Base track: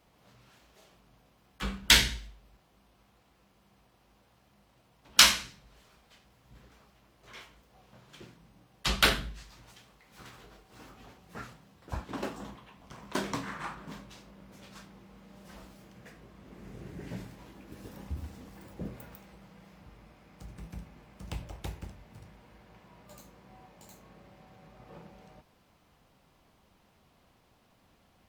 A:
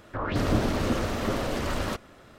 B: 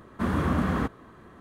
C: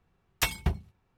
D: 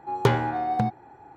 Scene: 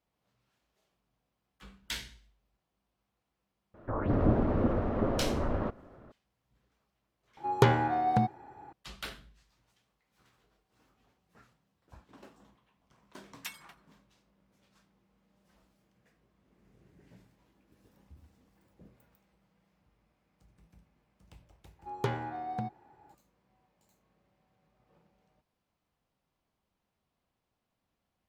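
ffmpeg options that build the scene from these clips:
-filter_complex "[4:a]asplit=2[a][b];[0:a]volume=-18dB[c];[1:a]lowpass=1k[d];[3:a]highpass=1.2k[e];[d]atrim=end=2.38,asetpts=PTS-STARTPTS,volume=-1dB,afade=t=in:d=0.004:c=hsin,afade=t=out:st=2.376:d=0.004:c=hsin,adelay=3740[f];[a]atrim=end=1.36,asetpts=PTS-STARTPTS,volume=-2dB,afade=t=in:d=0.004:c=hsin,afade=t=out:st=1.356:d=0.004:c=hsin,adelay=7370[g];[e]atrim=end=1.17,asetpts=PTS-STARTPTS,volume=-13.5dB,afade=t=in:d=0.004:c=hsin,afade=t=out:st=1.166:d=0.004:c=hsin,adelay=13030[h];[b]atrim=end=1.36,asetpts=PTS-STARTPTS,volume=-11.5dB,afade=t=in:d=0.004:c=hsin,afade=t=out:st=1.356:d=0.004:c=hsin,adelay=21790[i];[c][f][g][h][i]amix=inputs=5:normalize=0"

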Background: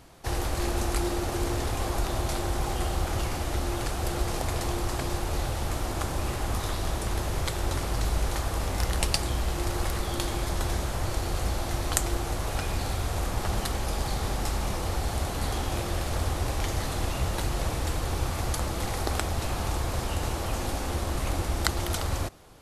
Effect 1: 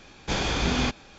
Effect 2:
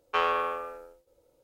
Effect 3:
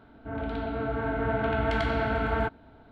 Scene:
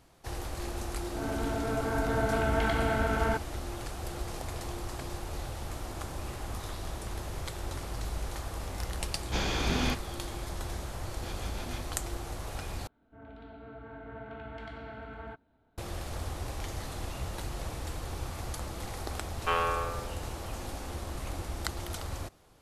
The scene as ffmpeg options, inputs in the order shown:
-filter_complex "[3:a]asplit=2[a][b];[1:a]asplit=2[c][d];[0:a]volume=-8.5dB[e];[d]acrossover=split=580[f][g];[f]aeval=exprs='val(0)*(1-0.7/2+0.7/2*cos(2*PI*6.6*n/s))':c=same[h];[g]aeval=exprs='val(0)*(1-0.7/2-0.7/2*cos(2*PI*6.6*n/s))':c=same[i];[h][i]amix=inputs=2:normalize=0[j];[e]asplit=2[k][l];[k]atrim=end=12.874[m];[b]atrim=end=2.91,asetpts=PTS-STARTPTS,volume=-16.5dB[n];[l]atrim=start=15.776[o];[a]atrim=end=2.91,asetpts=PTS-STARTPTS,volume=-1.5dB,afade=t=in:d=0.004:c=hsin,afade=t=out:st=2.906:d=0.004:c=hsin,adelay=890[p];[c]atrim=end=1.18,asetpts=PTS-STARTPTS,volume=-5dB,afade=t=in:d=0.004:c=hsin,afade=t=out:st=1.176:d=0.004:c=hsin,adelay=9040[q];[j]atrim=end=1.18,asetpts=PTS-STARTPTS,volume=-15.5dB,afade=t=in:d=0.004:c=hsin,afade=t=out:st=1.176:d=0.004:c=hsin,adelay=10920[r];[2:a]atrim=end=1.43,asetpts=PTS-STARTPTS,volume=-2.5dB,afade=t=in:d=0.004:c=hsin,afade=t=out:st=1.426:d=0.004:c=hsin,adelay=19330[s];[m][n]acrossfade=d=0.004:c1=hsin:c2=hsin[t];[t][o]acrossfade=d=0.004:c1=hsin:c2=hsin[u];[u][p][q][r][s]amix=inputs=5:normalize=0"

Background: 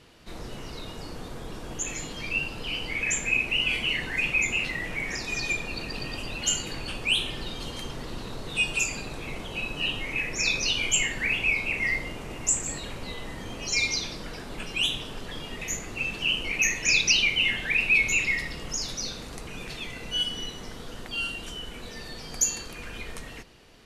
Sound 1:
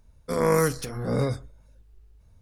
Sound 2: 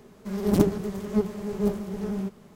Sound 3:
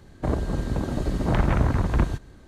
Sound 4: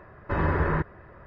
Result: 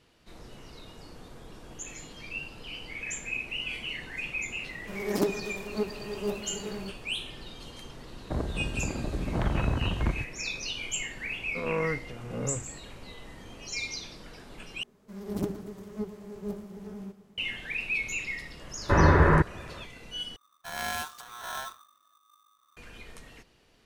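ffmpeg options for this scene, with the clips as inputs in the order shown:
-filter_complex "[2:a]asplit=2[a][b];[1:a]asplit=2[c][d];[0:a]volume=-9dB[e];[a]highpass=310[f];[c]lowpass=2.5k[g];[b]aecho=1:1:117|234|351|468|585|702:0.168|0.101|0.0604|0.0363|0.0218|0.0131[h];[4:a]dynaudnorm=f=150:g=3:m=9dB[i];[d]aeval=exprs='val(0)*sgn(sin(2*PI*1200*n/s))':c=same[j];[e]asplit=3[k][l][m];[k]atrim=end=14.834[n];[h]atrim=end=2.55,asetpts=PTS-STARTPTS,volume=-11dB[o];[l]atrim=start=17.376:end=20.364[p];[j]atrim=end=2.41,asetpts=PTS-STARTPTS,volume=-12.5dB[q];[m]atrim=start=22.766[r];[f]atrim=end=2.55,asetpts=PTS-STARTPTS,volume=-2.5dB,afade=t=in:d=0.004:c=hsin,afade=t=out:st=2.546:d=0.004:c=hsin,adelay=4620[s];[3:a]atrim=end=2.47,asetpts=PTS-STARTPTS,volume=-6.5dB,afade=t=in:d=0.004:c=hsin,afade=t=out:st=2.466:d=0.004:c=hsin,adelay=8070[t];[g]atrim=end=2.41,asetpts=PTS-STARTPTS,volume=-8.5dB,afade=t=in:d=0.004:c=hsin,afade=t=out:st=2.406:d=0.004:c=hsin,adelay=11260[u];[i]atrim=end=1.26,asetpts=PTS-STARTPTS,volume=-3dB,afade=t=in:d=0.004:c=hsin,afade=t=out:st=1.256:d=0.004:c=hsin,adelay=820260S[v];[n][o]acrossfade=d=0.004:c1=hsin:c2=hsin[w];[w][p]acrossfade=d=0.004:c1=hsin:c2=hsin[x];[x][q]acrossfade=d=0.004:c1=hsin:c2=hsin[y];[y][r]acrossfade=d=0.004:c1=hsin:c2=hsin[z];[z][s][t][u][v]amix=inputs=5:normalize=0"

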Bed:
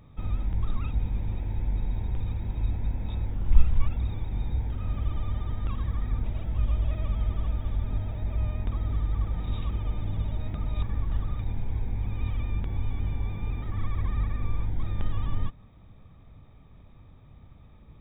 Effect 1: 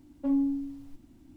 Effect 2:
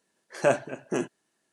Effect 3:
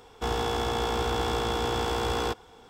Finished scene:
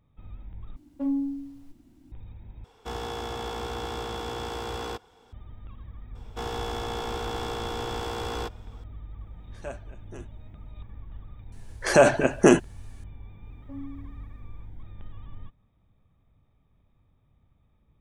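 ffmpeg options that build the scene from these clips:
-filter_complex "[1:a]asplit=2[a][b];[3:a]asplit=2[c][d];[2:a]asplit=2[e][f];[0:a]volume=-14dB[g];[f]alimiter=level_in=18.5dB:limit=-1dB:release=50:level=0:latency=1[h];[g]asplit=3[i][j][k];[i]atrim=end=0.764[l];[a]atrim=end=1.36,asetpts=PTS-STARTPTS,volume=-1dB[m];[j]atrim=start=2.116:end=2.644[n];[c]atrim=end=2.69,asetpts=PTS-STARTPTS,volume=-6dB[o];[k]atrim=start=5.326[p];[d]atrim=end=2.69,asetpts=PTS-STARTPTS,volume=-4.5dB,afade=t=in:d=0.004:c=hsin,afade=t=out:st=2.686:d=0.004:c=hsin,adelay=6150[q];[e]atrim=end=1.52,asetpts=PTS-STARTPTS,volume=-16dB,afade=t=in:d=0.004:c=hsin,afade=t=out:st=1.516:d=0.004:c=hsin,adelay=9200[r];[h]atrim=end=1.52,asetpts=PTS-STARTPTS,volume=-4dB,afade=t=in:d=0.004:c=hsin,afade=t=out:st=1.516:d=0.004:c=hsin,adelay=11520[s];[b]atrim=end=1.36,asetpts=PTS-STARTPTS,volume=-14dB,afade=t=in:d=0.004:c=hsin,afade=t=out:st=1.356:d=0.004:c=hsin,adelay=13450[t];[l][m]acrossfade=d=0.004:c1=hsin:c2=hsin[u];[u][n]acrossfade=d=0.004:c1=hsin:c2=hsin[v];[v][o]acrossfade=d=0.004:c1=hsin:c2=hsin[w];[w][p]acrossfade=d=0.004:c1=hsin:c2=hsin[x];[x][q][r][s][t]amix=inputs=5:normalize=0"

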